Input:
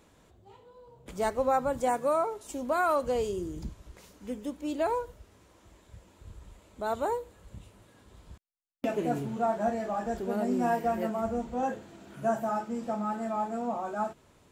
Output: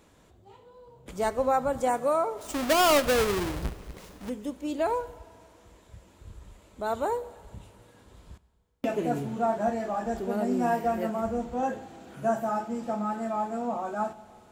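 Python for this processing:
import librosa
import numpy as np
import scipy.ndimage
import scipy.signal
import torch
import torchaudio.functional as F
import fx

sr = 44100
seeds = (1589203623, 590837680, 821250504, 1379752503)

y = fx.halfwave_hold(x, sr, at=(2.37, 4.28), fade=0.02)
y = fx.rev_schroeder(y, sr, rt60_s=2.2, comb_ms=31, drr_db=17.0)
y = y * 10.0 ** (1.5 / 20.0)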